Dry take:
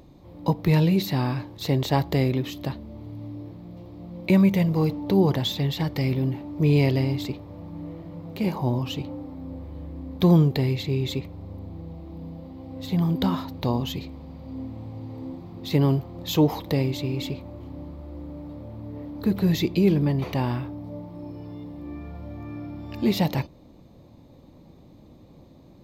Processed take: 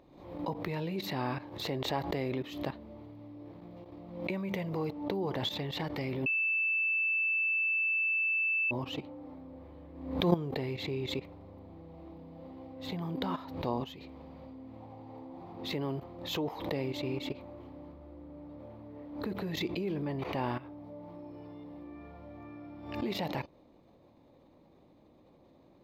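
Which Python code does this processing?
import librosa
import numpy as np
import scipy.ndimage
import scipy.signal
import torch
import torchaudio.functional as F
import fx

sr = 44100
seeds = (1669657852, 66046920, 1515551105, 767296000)

y = fx.peak_eq(x, sr, hz=800.0, db=7.0, octaves=0.69, at=(14.8, 15.64))
y = fx.low_shelf(y, sr, hz=320.0, db=5.0, at=(17.93, 18.6))
y = fx.edit(y, sr, fx.bleep(start_s=6.26, length_s=2.45, hz=2640.0, db=-12.5), tone=tone)
y = fx.level_steps(y, sr, step_db=14)
y = fx.bass_treble(y, sr, bass_db=-11, treble_db=-11)
y = fx.pre_swell(y, sr, db_per_s=69.0)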